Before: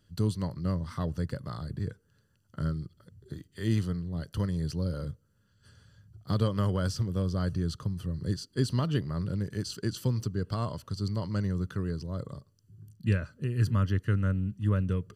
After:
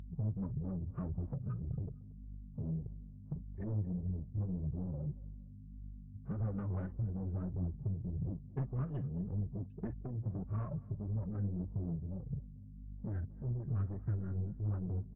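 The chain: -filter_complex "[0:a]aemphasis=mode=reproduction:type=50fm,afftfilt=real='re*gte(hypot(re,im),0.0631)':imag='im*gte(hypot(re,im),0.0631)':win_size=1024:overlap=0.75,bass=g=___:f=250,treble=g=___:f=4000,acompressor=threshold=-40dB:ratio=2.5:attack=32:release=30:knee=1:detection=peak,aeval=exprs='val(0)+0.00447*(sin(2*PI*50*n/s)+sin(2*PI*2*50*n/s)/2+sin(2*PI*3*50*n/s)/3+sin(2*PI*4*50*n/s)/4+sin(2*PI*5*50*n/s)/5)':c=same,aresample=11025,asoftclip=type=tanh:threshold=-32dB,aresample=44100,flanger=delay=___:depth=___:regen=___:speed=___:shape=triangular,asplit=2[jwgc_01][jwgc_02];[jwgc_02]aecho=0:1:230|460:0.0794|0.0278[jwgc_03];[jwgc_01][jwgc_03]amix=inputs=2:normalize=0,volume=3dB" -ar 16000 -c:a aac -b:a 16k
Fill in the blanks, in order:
6, 11, 0.5, 9.1, 8, 1.7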